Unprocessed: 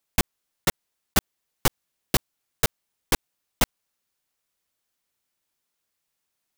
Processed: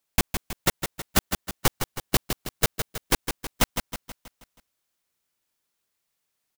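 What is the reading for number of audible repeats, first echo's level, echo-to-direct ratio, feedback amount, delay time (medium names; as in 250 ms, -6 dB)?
5, -7.5 dB, -6.0 dB, 50%, 160 ms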